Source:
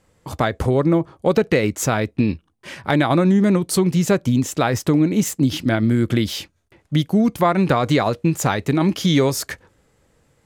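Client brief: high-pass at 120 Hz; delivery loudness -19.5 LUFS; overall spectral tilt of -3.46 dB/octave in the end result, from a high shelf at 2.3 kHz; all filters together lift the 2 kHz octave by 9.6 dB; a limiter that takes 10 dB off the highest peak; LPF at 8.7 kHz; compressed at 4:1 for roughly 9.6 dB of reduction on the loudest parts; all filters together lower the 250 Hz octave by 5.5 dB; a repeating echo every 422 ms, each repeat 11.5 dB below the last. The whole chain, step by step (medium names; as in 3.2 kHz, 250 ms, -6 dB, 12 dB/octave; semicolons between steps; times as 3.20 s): high-pass 120 Hz; low-pass 8.7 kHz; peaking EQ 250 Hz -7.5 dB; peaking EQ 2 kHz +8.5 dB; treble shelf 2.3 kHz +7 dB; compression 4:1, threshold -22 dBFS; peak limiter -14 dBFS; feedback delay 422 ms, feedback 27%, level -11.5 dB; trim +7 dB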